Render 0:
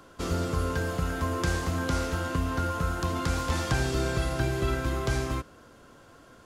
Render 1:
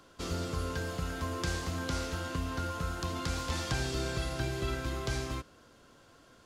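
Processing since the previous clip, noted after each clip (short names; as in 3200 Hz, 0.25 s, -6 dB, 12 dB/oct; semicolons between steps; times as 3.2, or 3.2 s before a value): EQ curve 1400 Hz 0 dB, 4300 Hz +6 dB, 11000 Hz +1 dB; gain -6.5 dB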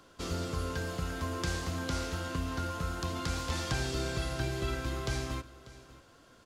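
echo 0.591 s -18.5 dB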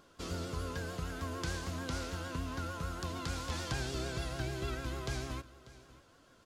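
vibrato 6.7 Hz 65 cents; gain -4 dB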